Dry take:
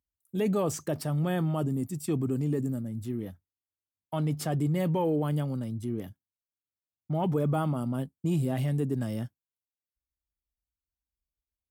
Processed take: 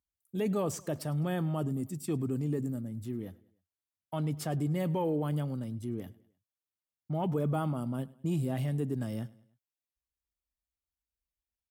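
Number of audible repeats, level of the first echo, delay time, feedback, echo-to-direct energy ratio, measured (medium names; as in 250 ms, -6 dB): 2, -22.0 dB, 102 ms, 47%, -21.0 dB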